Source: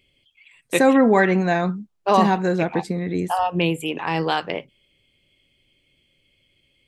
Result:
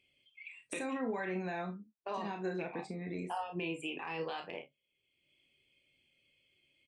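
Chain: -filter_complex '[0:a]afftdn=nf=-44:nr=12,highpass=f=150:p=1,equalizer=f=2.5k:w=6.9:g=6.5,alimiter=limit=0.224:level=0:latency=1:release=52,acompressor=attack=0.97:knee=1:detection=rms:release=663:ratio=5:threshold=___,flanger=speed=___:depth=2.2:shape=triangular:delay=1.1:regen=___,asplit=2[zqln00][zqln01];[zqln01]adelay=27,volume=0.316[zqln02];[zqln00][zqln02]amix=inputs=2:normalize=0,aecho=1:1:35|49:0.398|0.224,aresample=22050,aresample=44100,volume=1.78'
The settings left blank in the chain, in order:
0.0178, 0.66, 70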